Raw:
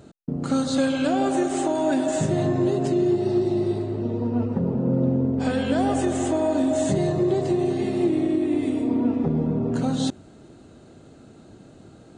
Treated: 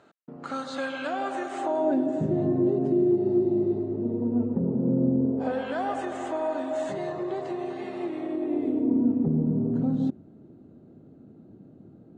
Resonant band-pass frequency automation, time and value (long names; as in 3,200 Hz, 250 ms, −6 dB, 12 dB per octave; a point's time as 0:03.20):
resonant band-pass, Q 1
0:01.55 1,400 Hz
0:02.05 280 Hz
0:05.21 280 Hz
0:05.73 1,200 Hz
0:08.18 1,200 Hz
0:09.05 210 Hz